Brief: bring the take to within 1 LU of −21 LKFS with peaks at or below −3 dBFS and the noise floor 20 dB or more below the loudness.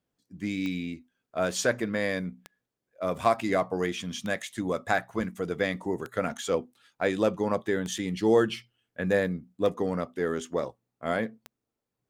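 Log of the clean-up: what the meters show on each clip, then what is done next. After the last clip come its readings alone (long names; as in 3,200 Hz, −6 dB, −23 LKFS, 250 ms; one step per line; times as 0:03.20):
number of clicks 7; integrated loudness −29.5 LKFS; sample peak −9.5 dBFS; target loudness −21.0 LKFS
→ click removal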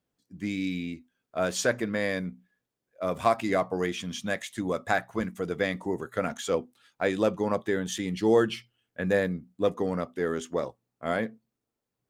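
number of clicks 0; integrated loudness −29.5 LKFS; sample peak −9.5 dBFS; target loudness −21.0 LKFS
→ level +8.5 dB
brickwall limiter −3 dBFS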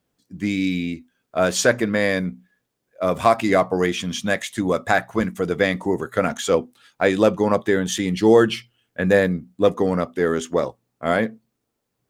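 integrated loudness −21.0 LKFS; sample peak −3.0 dBFS; background noise floor −77 dBFS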